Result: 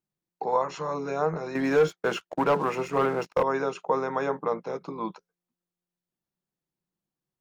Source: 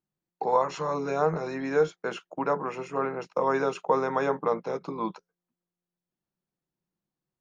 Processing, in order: 1.55–3.43 sample leveller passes 2; gain -1.5 dB

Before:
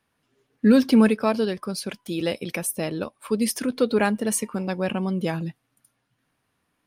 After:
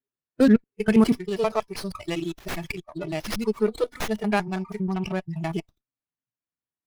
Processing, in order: slices in reverse order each 80 ms, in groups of 5; spectral noise reduction 27 dB; running maximum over 5 samples

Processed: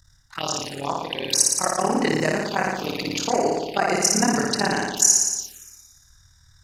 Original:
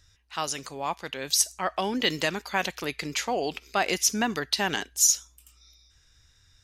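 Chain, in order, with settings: AM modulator 39 Hz, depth 90%; flutter echo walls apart 9.9 m, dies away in 1.3 s; envelope phaser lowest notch 430 Hz, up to 3400 Hz, full sweep at -25.5 dBFS; gain +8 dB

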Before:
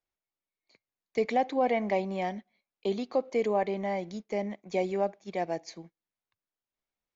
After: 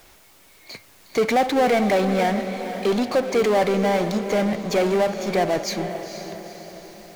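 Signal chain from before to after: power-law curve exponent 0.5; diffused feedback echo 0.476 s, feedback 51%, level -9.5 dB; gain +4.5 dB

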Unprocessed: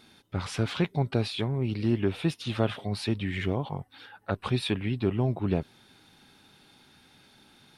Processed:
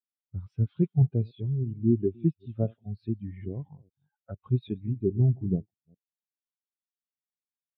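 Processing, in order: reverse delay 0.205 s, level -11.5 dB; spectral expander 2.5:1

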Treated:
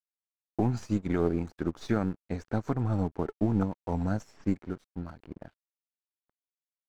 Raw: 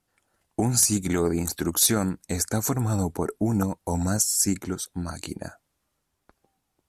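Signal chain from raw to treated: half-wave gain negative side -3 dB; air absorption 200 m; low-pass opened by the level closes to 620 Hz, open at -25.5 dBFS; high shelf 2900 Hz -7.5 dB; crossover distortion -48 dBFS; upward expander 1.5:1, over -41 dBFS

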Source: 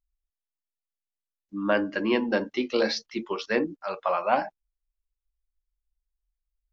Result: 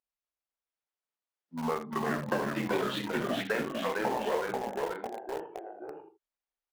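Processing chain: repeated pitch sweeps -9.5 st, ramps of 1.16 s; HPF 660 Hz 12 dB/oct; tilt -4 dB/oct; compressor 8:1, threshold -35 dBFS, peak gain reduction 14 dB; on a send: early reflections 33 ms -14 dB, 68 ms -10 dB; on the sum: echoes that change speed 0.247 s, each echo -1 st, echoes 3; in parallel at -9.5 dB: requantised 6-bit, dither none; on the sum: gain +3.5 dB

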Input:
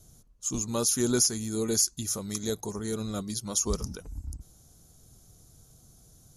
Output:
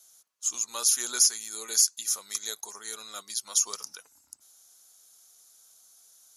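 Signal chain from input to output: HPF 1300 Hz 12 dB/oct; gain +3.5 dB

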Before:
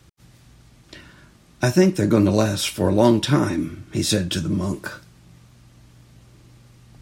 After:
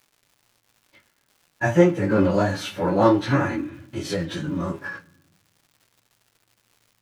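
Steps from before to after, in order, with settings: pitch shift by moving bins -1 st; HPF 92 Hz; gate -43 dBFS, range -23 dB; high shelf 4600 Hz -12 dB; harmonic-percussive split harmonic +6 dB; bell 1300 Hz +10 dB 2.5 oct; formant shift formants +3 st; crackle 260/s -39 dBFS; flange 0.68 Hz, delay 5.7 ms, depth 4.5 ms, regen -63%; on a send: reverb RT60 0.95 s, pre-delay 27 ms, DRR 20.5 dB; on the sum: gain -3 dB

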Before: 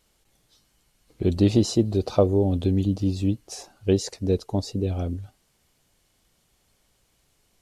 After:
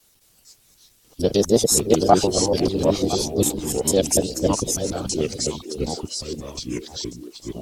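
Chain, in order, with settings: local time reversal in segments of 0.149 s; high shelf 2000 Hz +11.5 dB; formant shift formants +5 st; harmonic-percussive split harmonic -14 dB; echoes that change speed 0.211 s, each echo -4 st, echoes 2, each echo -6 dB; delay with a stepping band-pass 0.505 s, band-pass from 360 Hz, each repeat 1.4 oct, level -9 dB; gain +4.5 dB

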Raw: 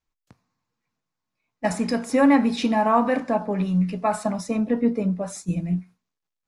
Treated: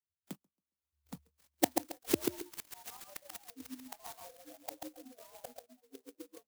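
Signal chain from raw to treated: echoes that change speed 0.783 s, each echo -2 st, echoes 2, each echo -6 dB; reverb removal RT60 1.3 s; AGC gain up to 6 dB; 1.89–3.94 flange 1.4 Hz, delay 9.1 ms, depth 4.7 ms, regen -87%; flipped gate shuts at -19 dBFS, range -40 dB; delay with a stepping band-pass 0.762 s, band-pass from 3300 Hz, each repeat -0.7 oct, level -2 dB; frequency shift +72 Hz; feedback echo 0.137 s, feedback 25%, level -4 dB; spectral noise reduction 29 dB; clock jitter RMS 0.15 ms; gain +6.5 dB

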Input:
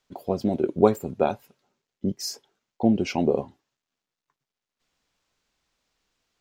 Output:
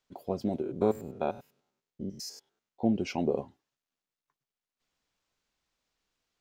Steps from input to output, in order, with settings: 0.62–2.83 stepped spectrum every 0.1 s; gain -6.5 dB

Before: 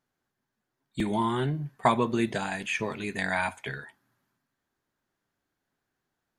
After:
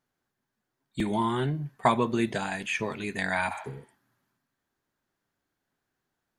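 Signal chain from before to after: spectral repair 3.53–3.89, 560–4600 Hz both

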